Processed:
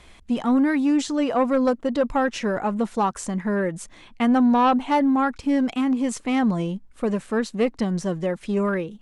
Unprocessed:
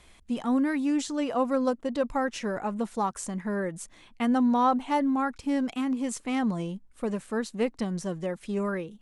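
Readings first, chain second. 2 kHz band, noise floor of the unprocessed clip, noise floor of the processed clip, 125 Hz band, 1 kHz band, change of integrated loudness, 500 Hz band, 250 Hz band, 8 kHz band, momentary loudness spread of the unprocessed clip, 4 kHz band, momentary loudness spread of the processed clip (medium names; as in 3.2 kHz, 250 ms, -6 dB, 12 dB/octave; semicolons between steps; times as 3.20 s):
+6.0 dB, -56 dBFS, -50 dBFS, +6.5 dB, +5.5 dB, +6.0 dB, +6.0 dB, +6.0 dB, +2.5 dB, 9 LU, +5.5 dB, 8 LU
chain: treble shelf 9 kHz -11 dB; in parallel at -8 dB: sine folder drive 6 dB, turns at -13 dBFS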